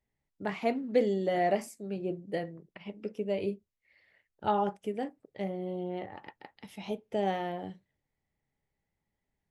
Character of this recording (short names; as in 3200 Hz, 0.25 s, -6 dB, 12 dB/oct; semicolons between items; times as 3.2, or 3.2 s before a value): noise floor -86 dBFS; spectral tilt -5.0 dB/oct